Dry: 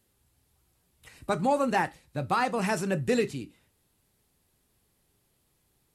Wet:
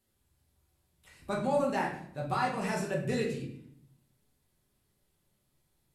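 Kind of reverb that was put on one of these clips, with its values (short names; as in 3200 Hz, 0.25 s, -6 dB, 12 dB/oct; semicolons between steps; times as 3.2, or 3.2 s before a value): shoebox room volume 120 m³, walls mixed, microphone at 1.1 m; gain -9 dB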